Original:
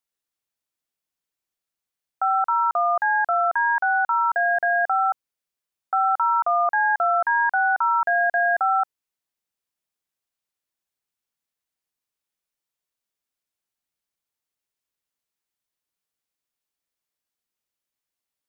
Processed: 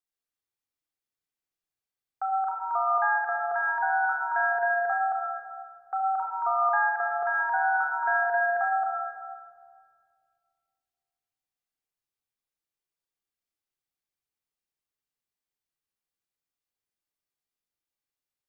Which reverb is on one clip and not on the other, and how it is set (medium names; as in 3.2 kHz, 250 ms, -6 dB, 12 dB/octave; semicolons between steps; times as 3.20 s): simulated room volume 3900 m³, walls mixed, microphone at 3.7 m; trim -10 dB